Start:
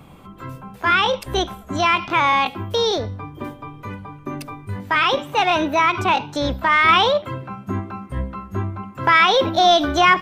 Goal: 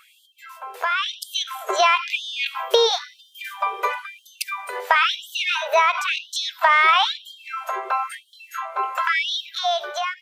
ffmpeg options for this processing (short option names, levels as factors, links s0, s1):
-filter_complex "[0:a]acompressor=threshold=0.0316:ratio=6,asettb=1/sr,asplit=3[s0][s1][s2];[s0]atrim=end=7.974[s3];[s1]atrim=start=7.97:end=8.97,asetpts=PTS-STARTPTS,afade=t=in:d=0.004:c=qsin,afade=t=out:st=0.996:d=0.004:c=qsin,asplit=2[s4][s5];[s5]adelay=24,volume=0.473[s6];[s4][s6]amix=inputs=2:normalize=0,atrim=end_sample=44100[s7];[s2]atrim=start=8.966[s8];[s3][s7]acrossfade=d=0.004:c1=hsin:c2=qsin[s9];[s9][s8]acrossfade=d=0.004:c1=qsin:c2=hsin,dynaudnorm=f=430:g=5:m=4.47,afftfilt=real='re*gte(b*sr/1024,360*pow(3000/360,0.5+0.5*sin(2*PI*0.99*pts/sr)))':imag='im*gte(b*sr/1024,360*pow(3000/360,0.5+0.5*sin(2*PI*0.99*pts/sr)))':win_size=1024:overlap=0.75,volume=1.41"